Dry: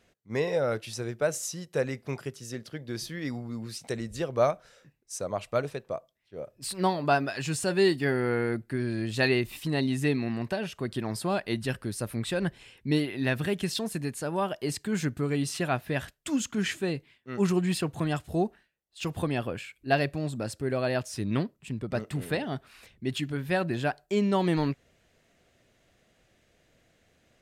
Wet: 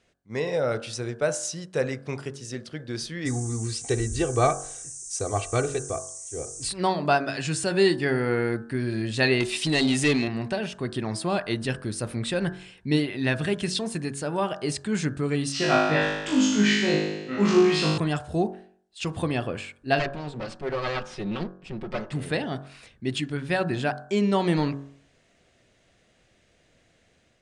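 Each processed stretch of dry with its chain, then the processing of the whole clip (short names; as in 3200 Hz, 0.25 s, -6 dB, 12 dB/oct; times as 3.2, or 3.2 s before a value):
3.25–6.68 low shelf 170 Hz +11.5 dB + comb 2.6 ms, depth 80% + band noise 5900–9300 Hz -43 dBFS
9.4–10.28 bell 1100 Hz -9.5 dB 1.9 oct + overdrive pedal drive 20 dB, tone 7300 Hz, clips at -15.5 dBFS
15.52–17.98 LPF 6300 Hz 24 dB/oct + low shelf 160 Hz -5 dB + flutter echo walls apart 3.3 m, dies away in 1.1 s
19.99–22.12 minimum comb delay 5.4 ms + LPF 4300 Hz
whole clip: elliptic low-pass 9500 Hz, stop band 50 dB; de-hum 46.31 Hz, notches 38; AGC gain up to 4 dB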